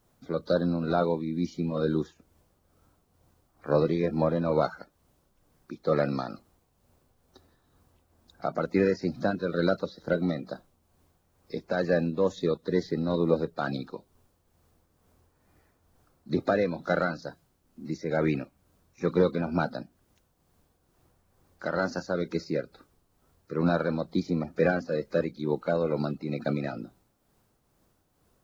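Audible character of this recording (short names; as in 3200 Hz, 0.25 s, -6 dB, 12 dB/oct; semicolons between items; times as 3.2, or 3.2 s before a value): a quantiser's noise floor 12-bit, dither triangular; tremolo triangle 2.2 Hz, depth 50%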